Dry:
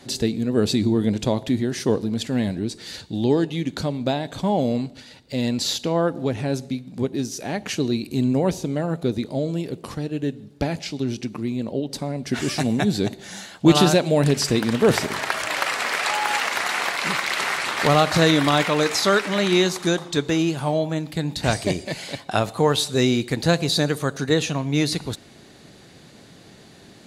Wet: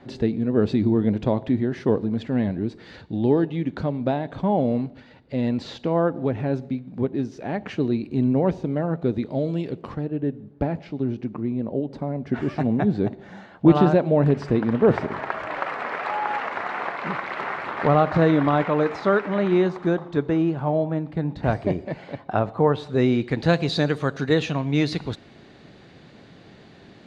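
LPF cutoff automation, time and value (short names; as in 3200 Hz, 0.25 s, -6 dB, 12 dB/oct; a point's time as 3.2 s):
9.01 s 1800 Hz
9.64 s 3400 Hz
10.1 s 1300 Hz
22.73 s 1300 Hz
23.58 s 3200 Hz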